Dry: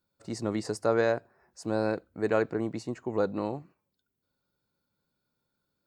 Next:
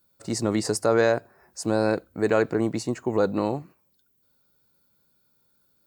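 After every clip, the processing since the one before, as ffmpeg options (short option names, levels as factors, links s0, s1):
-filter_complex "[0:a]asplit=2[s0][s1];[s1]alimiter=limit=0.1:level=0:latency=1,volume=1.26[s2];[s0][s2]amix=inputs=2:normalize=0,highshelf=f=8000:g=12"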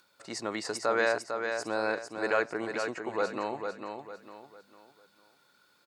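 -filter_complex "[0:a]acompressor=mode=upward:threshold=0.00891:ratio=2.5,bandpass=f=1900:t=q:w=0.68:csg=0,asplit=2[s0][s1];[s1]aecho=0:1:451|902|1353|1804:0.501|0.18|0.065|0.0234[s2];[s0][s2]amix=inputs=2:normalize=0"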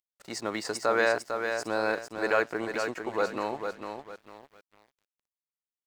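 -af "aeval=exprs='sgn(val(0))*max(abs(val(0))-0.00251,0)':c=same,volume=1.33"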